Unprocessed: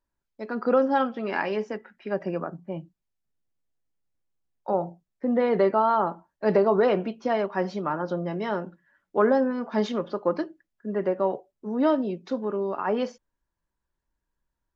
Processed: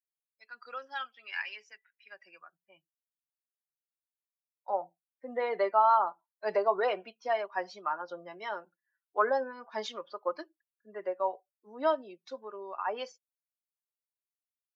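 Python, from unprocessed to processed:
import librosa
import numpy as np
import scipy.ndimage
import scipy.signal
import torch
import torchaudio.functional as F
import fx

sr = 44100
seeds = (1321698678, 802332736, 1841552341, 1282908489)

y = fx.bin_expand(x, sr, power=1.5)
y = fx.wow_flutter(y, sr, seeds[0], rate_hz=2.1, depth_cents=23.0)
y = fx.filter_sweep_highpass(y, sr, from_hz=2200.0, to_hz=770.0, start_s=2.39, end_s=3.62, q=1.0)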